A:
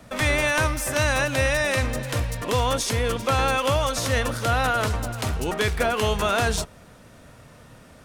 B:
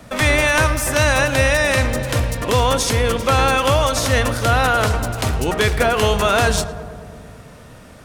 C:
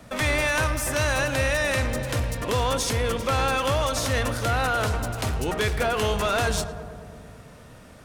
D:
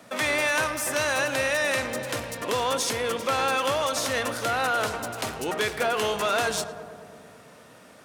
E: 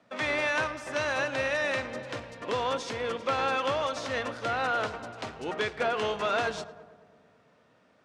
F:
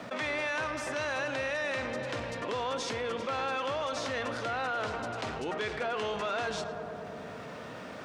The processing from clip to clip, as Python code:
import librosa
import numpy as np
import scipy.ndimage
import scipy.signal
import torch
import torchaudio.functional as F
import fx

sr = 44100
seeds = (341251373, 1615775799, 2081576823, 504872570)

y1 = fx.echo_filtered(x, sr, ms=109, feedback_pct=78, hz=1800.0, wet_db=-13)
y1 = y1 * librosa.db_to_amplitude(6.0)
y2 = 10.0 ** (-11.0 / 20.0) * np.tanh(y1 / 10.0 ** (-11.0 / 20.0))
y2 = y2 * librosa.db_to_amplitude(-5.5)
y3 = scipy.signal.sosfilt(scipy.signal.bessel(2, 280.0, 'highpass', norm='mag', fs=sr, output='sos'), y2)
y4 = fx.air_absorb(y3, sr, metres=130.0)
y4 = fx.upward_expand(y4, sr, threshold_db=-45.0, expansion=1.5)
y4 = y4 * librosa.db_to_amplitude(-1.5)
y5 = fx.env_flatten(y4, sr, amount_pct=70)
y5 = y5 * librosa.db_to_amplitude(-6.5)